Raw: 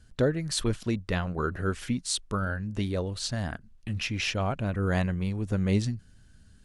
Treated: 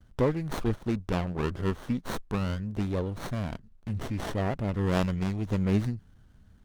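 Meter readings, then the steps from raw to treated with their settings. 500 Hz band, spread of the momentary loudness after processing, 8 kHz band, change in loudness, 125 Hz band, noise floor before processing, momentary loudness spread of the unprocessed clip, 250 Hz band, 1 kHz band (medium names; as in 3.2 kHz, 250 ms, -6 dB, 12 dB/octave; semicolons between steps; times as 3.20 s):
0.0 dB, 8 LU, -13.0 dB, -1.0 dB, -0.5 dB, -56 dBFS, 6 LU, +0.5 dB, -0.5 dB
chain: gate with hold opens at -49 dBFS; time-frequency box 4.83–5.58 s, 2–7.3 kHz +10 dB; sliding maximum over 17 samples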